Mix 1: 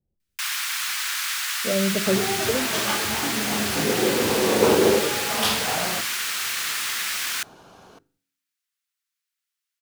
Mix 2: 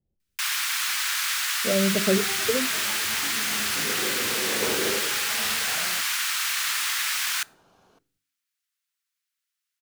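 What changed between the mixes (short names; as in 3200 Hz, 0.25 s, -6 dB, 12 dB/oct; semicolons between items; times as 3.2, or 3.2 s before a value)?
first sound: send +6.5 dB; second sound -11.5 dB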